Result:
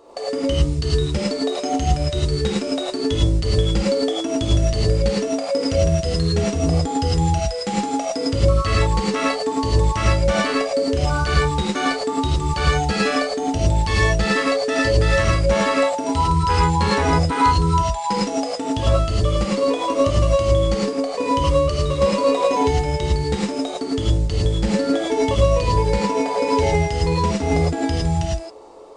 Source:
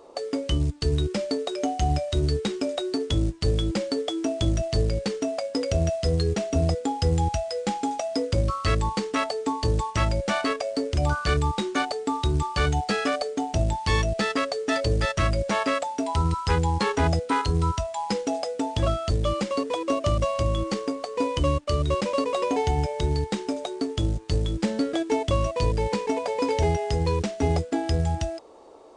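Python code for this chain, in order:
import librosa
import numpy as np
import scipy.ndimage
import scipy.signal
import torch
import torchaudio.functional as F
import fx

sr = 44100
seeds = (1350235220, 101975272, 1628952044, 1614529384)

y = fx.rev_gated(x, sr, seeds[0], gate_ms=130, shape='rising', drr_db=-5.0)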